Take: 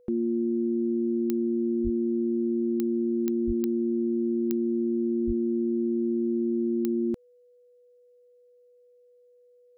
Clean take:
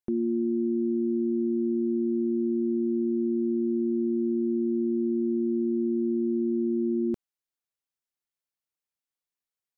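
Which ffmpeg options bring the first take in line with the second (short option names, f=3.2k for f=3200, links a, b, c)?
-filter_complex "[0:a]adeclick=t=4,bandreject=f=490:w=30,asplit=3[a][b][c];[a]afade=t=out:st=1.83:d=0.02[d];[b]highpass=f=140:w=0.5412,highpass=f=140:w=1.3066,afade=t=in:st=1.83:d=0.02,afade=t=out:st=1.95:d=0.02[e];[c]afade=t=in:st=1.95:d=0.02[f];[d][e][f]amix=inputs=3:normalize=0,asplit=3[g][h][i];[g]afade=t=out:st=3.46:d=0.02[j];[h]highpass=f=140:w=0.5412,highpass=f=140:w=1.3066,afade=t=in:st=3.46:d=0.02,afade=t=out:st=3.58:d=0.02[k];[i]afade=t=in:st=3.58:d=0.02[l];[j][k][l]amix=inputs=3:normalize=0,asplit=3[m][n][o];[m]afade=t=out:st=5.26:d=0.02[p];[n]highpass=f=140:w=0.5412,highpass=f=140:w=1.3066,afade=t=in:st=5.26:d=0.02,afade=t=out:st=5.38:d=0.02[q];[o]afade=t=in:st=5.38:d=0.02[r];[p][q][r]amix=inputs=3:normalize=0"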